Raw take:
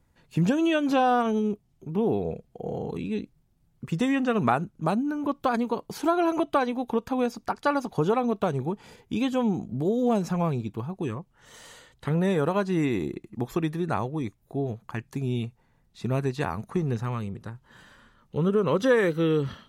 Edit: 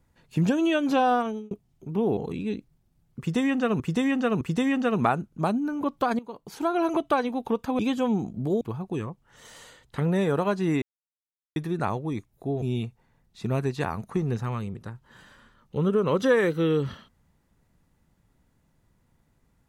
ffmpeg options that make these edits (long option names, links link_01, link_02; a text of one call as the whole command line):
ffmpeg -i in.wav -filter_complex "[0:a]asplit=11[link_01][link_02][link_03][link_04][link_05][link_06][link_07][link_08][link_09][link_10][link_11];[link_01]atrim=end=1.51,asetpts=PTS-STARTPTS,afade=type=out:start_time=1.13:duration=0.38[link_12];[link_02]atrim=start=1.51:end=2.172,asetpts=PTS-STARTPTS,afade=type=in:duration=0.004:curve=hsin[link_13];[link_03]atrim=start=2.818:end=4.452[link_14];[link_04]atrim=start=3.838:end=4.452[link_15];[link_05]atrim=start=3.838:end=5.62,asetpts=PTS-STARTPTS,afade=type=out:start_time=1.778:duration=0.004:curve=hsin:silence=0.141254[link_16];[link_06]atrim=start=5.62:end=7.222,asetpts=PTS-STARTPTS,afade=type=in:duration=0.7:silence=0.141254[link_17];[link_07]atrim=start=9.138:end=9.962[link_18];[link_08]atrim=start=10.698:end=12.91,asetpts=PTS-STARTPTS,afade=type=out:start_time=2.208:duration=0.004:curve=hsin[link_19];[link_09]atrim=start=12.91:end=13.65,asetpts=PTS-STARTPTS,volume=0[link_20];[link_10]atrim=start=13.65:end=14.712,asetpts=PTS-STARTPTS,afade=type=in:duration=0.004:curve=hsin[link_21];[link_11]atrim=start=15.218[link_22];[link_12][link_13]concat=n=2:v=0:a=1[link_23];[link_23][link_14]acrossfade=duration=0.004:curve1=hsin:curve2=hsin[link_24];[link_24][link_15]acrossfade=duration=0.004:curve1=hsin:curve2=hsin[link_25];[link_16][link_17]concat=n=2:v=0:a=1[link_26];[link_25][link_26]acrossfade=duration=0.004:curve1=hsin:curve2=hsin[link_27];[link_27][link_18]acrossfade=duration=0.004:curve1=hsin:curve2=hsin[link_28];[link_19][link_20][link_21]concat=n=3:v=0:a=1[link_29];[link_28][link_29]acrossfade=duration=0.004:curve1=hsin:curve2=hsin[link_30];[link_30][link_22]acrossfade=duration=0.004:curve1=hsin:curve2=hsin" out.wav